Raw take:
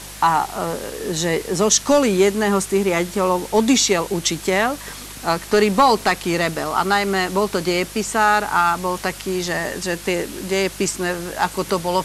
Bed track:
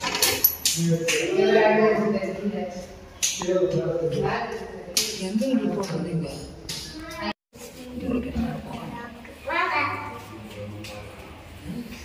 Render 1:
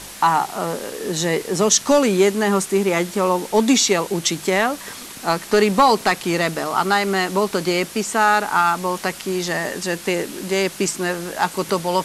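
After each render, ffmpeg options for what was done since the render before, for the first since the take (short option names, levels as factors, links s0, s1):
-af "bandreject=f=50:t=h:w=4,bandreject=f=100:t=h:w=4,bandreject=f=150:t=h:w=4"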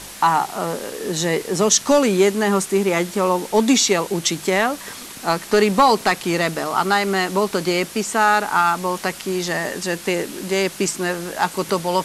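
-af anull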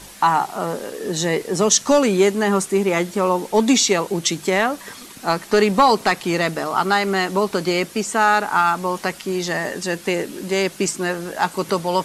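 -af "afftdn=nr=6:nf=-37"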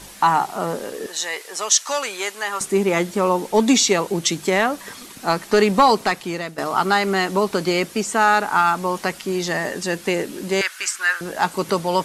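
-filter_complex "[0:a]asettb=1/sr,asplit=3[s0][s1][s2];[s0]atrim=end=1.064[s3];[s1]atrim=start=1.06:end=2.61,asetpts=PTS-STARTPTS,afade=t=in:d=0.004:c=qsin,afade=t=out:st=1.546:d=0.004:c=qsin,highpass=1000[s4];[s2]atrim=start=2.606[s5];[s3][s4]acrossfade=d=0.004:c1=hsin:c2=qsin[s6];[s6][s5]acrossfade=d=0.004:c1=qsin:c2=hsin,asettb=1/sr,asplit=3[s7][s8][s9];[s7]atrim=end=10.614[s10];[s8]atrim=start=10.61:end=11.21,asetpts=PTS-STARTPTS,afade=t=in:d=0.004:c=qsin,afade=t=out:st=0.596:d=0.004:c=qsin,highpass=f=1500:t=q:w=3.2[s11];[s9]atrim=start=11.206[s12];[s10][s11]acrossfade=d=0.004:c1=hsin:c2=qsin[s13];[s13][s12]acrossfade=d=0.004:c1=qsin:c2=hsin,asplit=2[s14][s15];[s14]atrim=end=6.58,asetpts=PTS-STARTPTS,afade=t=out:st=5.89:d=0.69:silence=0.211349[s16];[s15]atrim=start=6.58,asetpts=PTS-STARTPTS,afade=t=in:d=0.004:c=hsin:silence=0.211349[s17];[s16][s17]concat=n=2:v=0:a=1"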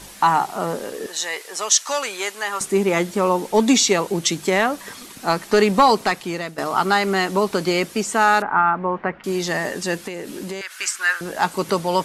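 -filter_complex "[0:a]asettb=1/sr,asplit=3[s0][s1][s2];[s0]atrim=end=8.424[s3];[s1]atrim=start=8.42:end=9.24,asetpts=PTS-STARTPTS,afade=t=in:d=0.004:c=qsin,afade=t=out:st=0.816:d=0.004:c=qsin,lowpass=f=2000:w=0.5412,lowpass=f=2000:w=1.3066[s4];[s2]atrim=start=9.236[s5];[s3][s4]acrossfade=d=0.004:c1=hsin:c2=qsin[s6];[s6][s5]acrossfade=d=0.004:c1=qsin:c2=hsin,asettb=1/sr,asplit=3[s7][s8][s9];[s7]atrim=end=10.024[s10];[s8]atrim=start=10.02:end=10.71,asetpts=PTS-STARTPTS,afade=t=in:d=0.004:c=qsin,afade=t=out:st=0.686:d=0.004:c=qsin,acompressor=threshold=0.0501:ratio=5:attack=3.2:release=140:knee=1:detection=peak[s11];[s9]atrim=start=10.706[s12];[s10][s11]acrossfade=d=0.004:c1=hsin:c2=qsin[s13];[s13][s12]acrossfade=d=0.004:c1=qsin:c2=hsin"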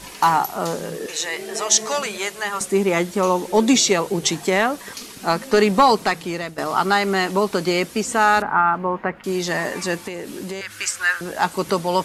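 -filter_complex "[1:a]volume=0.2[s0];[0:a][s0]amix=inputs=2:normalize=0"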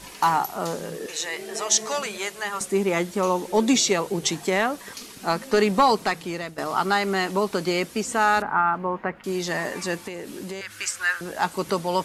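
-af "volume=0.631"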